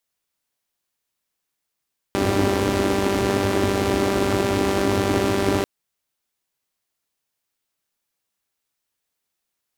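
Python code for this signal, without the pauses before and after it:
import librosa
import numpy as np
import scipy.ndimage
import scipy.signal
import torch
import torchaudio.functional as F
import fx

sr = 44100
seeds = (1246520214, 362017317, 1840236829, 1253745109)

y = fx.engine_four(sr, seeds[0], length_s=3.49, rpm=5900, resonances_hz=(100.0, 280.0))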